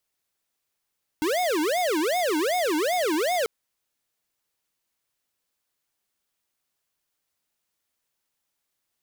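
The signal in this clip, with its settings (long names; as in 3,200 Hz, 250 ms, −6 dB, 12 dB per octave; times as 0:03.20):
siren wail 300–733 Hz 2.6 per second square −24 dBFS 2.24 s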